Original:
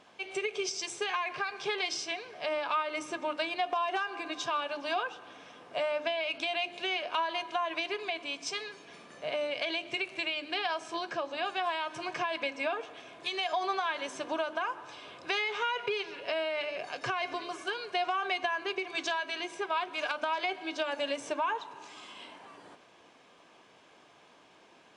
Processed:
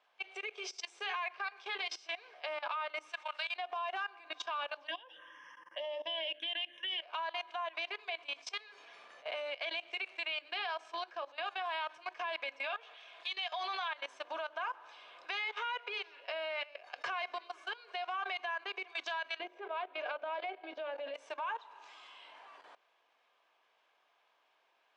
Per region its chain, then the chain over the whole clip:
3.09–3.56 Bessel high-pass 1100 Hz + high shelf 2200 Hz +5 dB
4.87–7.02 ripple EQ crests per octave 1.2, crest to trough 17 dB + envelope phaser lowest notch 580 Hz, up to 1500 Hz, full sweep at -25 dBFS
12.64–13.88 HPF 450 Hz 6 dB/oct + bell 3500 Hz +7 dB 1.3 oct
19.39–21.14 BPF 190–2900 Hz + resonant low shelf 750 Hz +8 dB, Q 1.5
whole clip: notches 60/120/180/240/300/360/420/480/540/600 Hz; level quantiser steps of 18 dB; three-band isolator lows -24 dB, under 510 Hz, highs -13 dB, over 4800 Hz

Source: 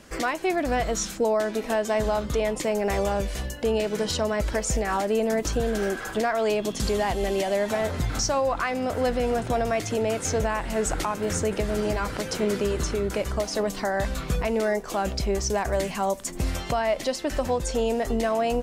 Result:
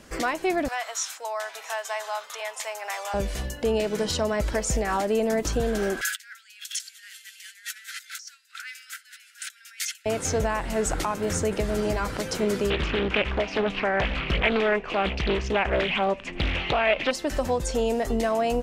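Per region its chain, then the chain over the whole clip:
0.68–3.14 HPF 810 Hz 24 dB/oct + notch 4500 Hz, Q 24 + echo 0.686 s -18.5 dB
6.01–10.06 high shelf 4500 Hz +7.5 dB + negative-ratio compressor -31 dBFS, ratio -0.5 + steep high-pass 1400 Hz 96 dB/oct
12.7–17.11 synth low-pass 2600 Hz, resonance Q 7.7 + Doppler distortion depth 0.93 ms
whole clip: dry

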